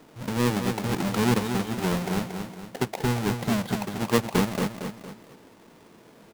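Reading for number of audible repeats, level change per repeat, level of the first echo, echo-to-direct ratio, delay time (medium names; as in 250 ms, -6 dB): 3, -7.0 dB, -7.0 dB, -6.0 dB, 230 ms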